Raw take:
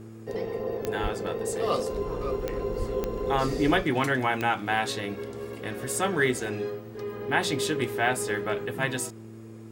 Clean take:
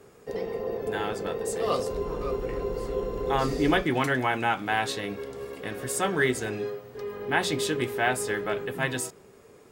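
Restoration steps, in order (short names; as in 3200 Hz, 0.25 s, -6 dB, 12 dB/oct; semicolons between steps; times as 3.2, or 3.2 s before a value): de-click; de-hum 111.4 Hz, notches 3; de-plosive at 1.02/2.78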